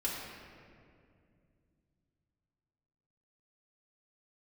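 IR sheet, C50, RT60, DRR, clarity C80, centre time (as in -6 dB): 0.5 dB, 2.4 s, -6.0 dB, 2.0 dB, 0.102 s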